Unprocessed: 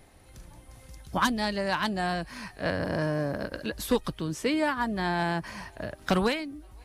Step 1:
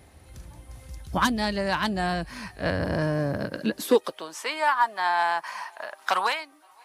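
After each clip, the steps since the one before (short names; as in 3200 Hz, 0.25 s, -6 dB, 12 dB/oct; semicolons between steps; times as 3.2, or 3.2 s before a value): high-pass sweep 62 Hz -> 930 Hz, 3.15–4.37; gain +2 dB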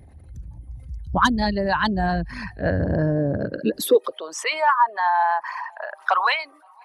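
formant sharpening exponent 2; bell 490 Hz -3.5 dB 3 oct; gain +7 dB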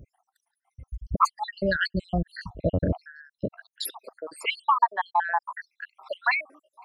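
random spectral dropouts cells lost 75%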